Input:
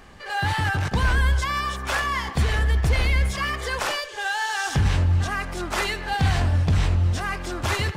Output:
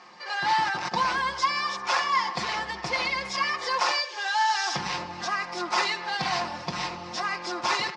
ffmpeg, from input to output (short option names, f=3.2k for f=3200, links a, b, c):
-af "highpass=380,equalizer=f=400:t=q:w=4:g=-6,equalizer=f=580:t=q:w=4:g=-5,equalizer=f=980:t=q:w=4:g=6,equalizer=f=1.6k:t=q:w=4:g=-6,equalizer=f=3.1k:t=q:w=4:g=-5,equalizer=f=5.1k:t=q:w=4:g=7,lowpass=f=6k:w=0.5412,lowpass=f=6k:w=1.3066,aecho=1:1:5.6:0.67"